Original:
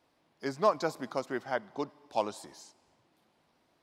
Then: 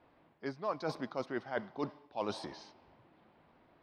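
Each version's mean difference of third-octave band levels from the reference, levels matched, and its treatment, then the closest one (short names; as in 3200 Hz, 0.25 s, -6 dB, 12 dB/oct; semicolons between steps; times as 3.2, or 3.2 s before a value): 5.5 dB: low shelf 86 Hz +5.5 dB; reverse; compressor 8:1, threshold -39 dBFS, peak gain reduction 19 dB; reverse; low-pass opened by the level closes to 2200 Hz, open at -37.5 dBFS; polynomial smoothing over 15 samples; gain +6 dB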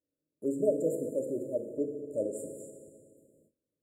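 14.0 dB: brick-wall FIR band-stop 630–7000 Hz; dynamic EQ 180 Hz, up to -5 dB, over -47 dBFS, Q 0.92; FDN reverb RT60 2 s, low-frequency decay 1.1×, high-frequency decay 0.85×, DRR 2.5 dB; gate with hold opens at -59 dBFS; gain +3.5 dB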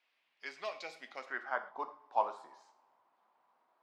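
8.0 dB: HPF 180 Hz 6 dB/oct; spectral gain 0.64–1.18, 850–1800 Hz -9 dB; band-pass sweep 2500 Hz -> 1000 Hz, 1–1.69; non-linear reverb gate 0.16 s falling, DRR 7.5 dB; gain +3.5 dB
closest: first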